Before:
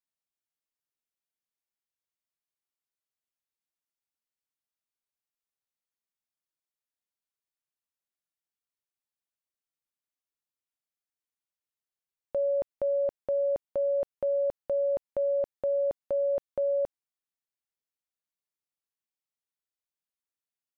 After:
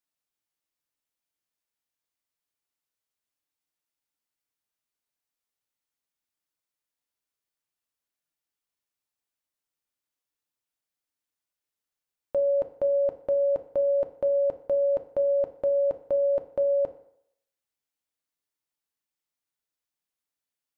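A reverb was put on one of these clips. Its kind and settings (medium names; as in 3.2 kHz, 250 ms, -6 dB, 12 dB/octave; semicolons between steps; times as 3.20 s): FDN reverb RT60 0.71 s, low-frequency decay 0.8×, high-frequency decay 0.8×, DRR 7 dB; trim +3 dB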